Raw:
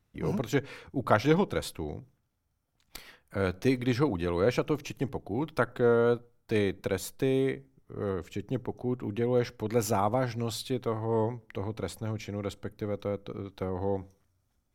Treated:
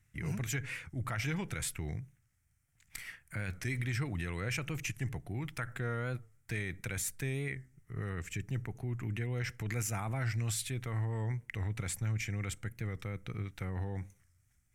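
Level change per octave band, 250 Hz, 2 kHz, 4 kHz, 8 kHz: -10.5, -1.0, -4.5, +3.5 dB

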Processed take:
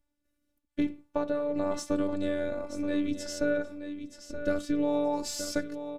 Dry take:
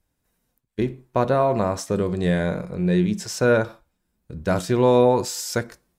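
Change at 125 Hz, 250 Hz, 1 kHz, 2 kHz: -20.5, -6.0, -13.5, -9.5 dB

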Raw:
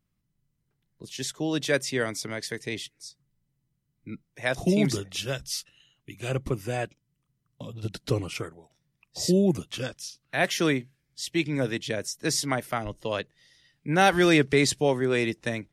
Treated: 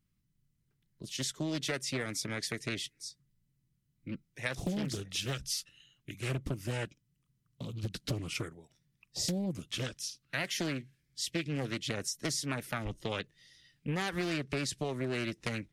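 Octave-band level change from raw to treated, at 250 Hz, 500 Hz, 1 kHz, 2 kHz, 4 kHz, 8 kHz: -10.0, -12.5, -13.0, -9.0, -5.0, -5.0 dB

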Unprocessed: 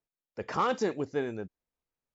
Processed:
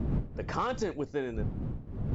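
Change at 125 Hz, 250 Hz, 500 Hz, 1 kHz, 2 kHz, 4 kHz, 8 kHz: +11.5 dB, +1.5 dB, -2.5 dB, -3.0 dB, -2.5 dB, -2.5 dB, n/a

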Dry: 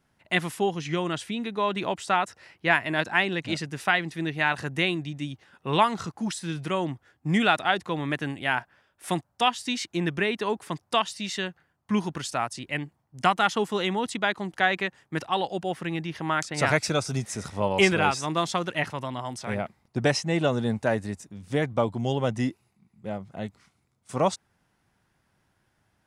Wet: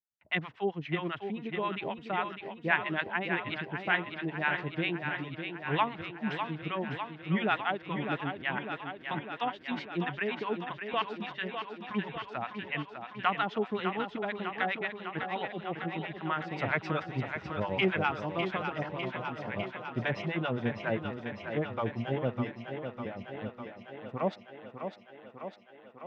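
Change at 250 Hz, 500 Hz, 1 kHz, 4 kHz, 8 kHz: -6.0 dB, -6.5 dB, -6.5 dB, -9.5 dB, under -30 dB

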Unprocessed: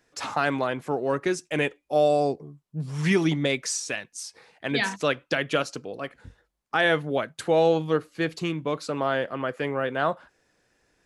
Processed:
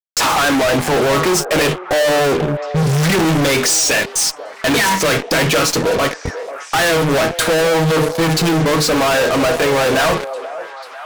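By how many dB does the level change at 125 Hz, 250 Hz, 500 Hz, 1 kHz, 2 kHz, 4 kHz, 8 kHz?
+13.0, +10.5, +10.0, +11.5, +11.5, +15.5, +18.5 dB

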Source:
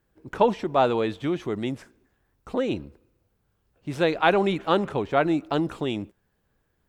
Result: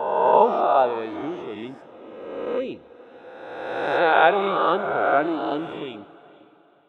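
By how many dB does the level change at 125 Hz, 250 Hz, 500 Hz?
-10.0, -3.5, +3.0 dB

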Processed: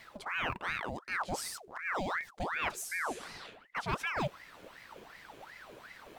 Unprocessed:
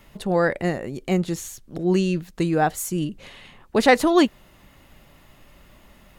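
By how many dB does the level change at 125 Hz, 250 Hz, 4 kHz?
-17.5, -23.5, -11.0 dB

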